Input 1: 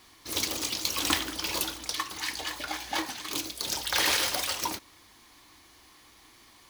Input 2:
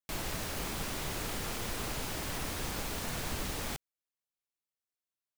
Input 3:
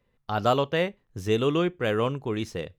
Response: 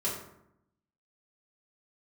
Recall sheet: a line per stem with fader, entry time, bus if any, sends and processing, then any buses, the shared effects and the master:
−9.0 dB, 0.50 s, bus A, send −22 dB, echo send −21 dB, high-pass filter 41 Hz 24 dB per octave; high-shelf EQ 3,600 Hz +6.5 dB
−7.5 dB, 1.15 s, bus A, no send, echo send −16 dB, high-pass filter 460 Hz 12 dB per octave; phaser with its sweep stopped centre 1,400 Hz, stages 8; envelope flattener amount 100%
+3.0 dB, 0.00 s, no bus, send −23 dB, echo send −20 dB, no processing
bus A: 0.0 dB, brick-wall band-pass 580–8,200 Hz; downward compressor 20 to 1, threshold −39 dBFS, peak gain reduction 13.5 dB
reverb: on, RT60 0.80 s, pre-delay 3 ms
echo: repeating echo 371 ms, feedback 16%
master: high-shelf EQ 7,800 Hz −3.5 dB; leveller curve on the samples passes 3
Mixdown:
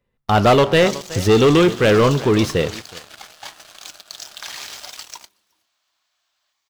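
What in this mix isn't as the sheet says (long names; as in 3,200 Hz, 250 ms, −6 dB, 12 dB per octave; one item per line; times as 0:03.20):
stem 1 −9.0 dB → −15.0 dB
master: missing high-shelf EQ 7,800 Hz −3.5 dB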